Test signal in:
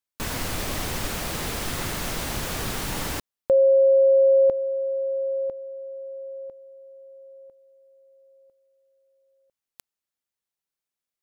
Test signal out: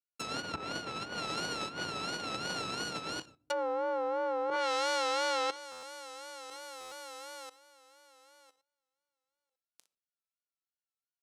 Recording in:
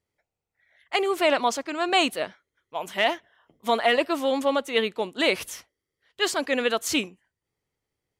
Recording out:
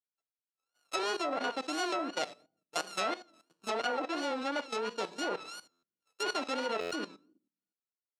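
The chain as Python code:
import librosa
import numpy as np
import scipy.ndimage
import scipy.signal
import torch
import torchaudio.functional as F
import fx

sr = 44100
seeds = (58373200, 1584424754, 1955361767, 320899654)

p1 = np.r_[np.sort(x[:len(x) // 32 * 32].reshape(-1, 32), axis=1).ravel(), x[len(x) // 32 * 32:]]
p2 = scipy.signal.sosfilt(scipy.signal.butter(2, 11000.0, 'lowpass', fs=sr, output='sos'), p1)
p3 = fx.rider(p2, sr, range_db=5, speed_s=2.0)
p4 = p2 + F.gain(torch.from_numpy(p3), -0.5).numpy()
p5 = fx.gate_hold(p4, sr, open_db=-47.0, close_db=-50.0, hold_ms=29.0, range_db=-14, attack_ms=10.0, release_ms=26.0)
p6 = fx.room_early_taps(p5, sr, ms=(40, 60), db=(-14.0, -12.0))
p7 = fx.room_shoebox(p6, sr, seeds[0], volume_m3=380.0, walls='furnished', distance_m=0.42)
p8 = fx.env_lowpass_down(p7, sr, base_hz=360.0, full_db=-7.0)
p9 = fx.vibrato(p8, sr, rate_hz=2.9, depth_cents=94.0)
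p10 = fx.peak_eq(p9, sr, hz=1600.0, db=-9.5, octaves=2.3)
p11 = fx.level_steps(p10, sr, step_db=15)
p12 = fx.weighting(p11, sr, curve='A')
y = fx.buffer_glitch(p12, sr, at_s=(5.71, 6.8), block=512, repeats=9)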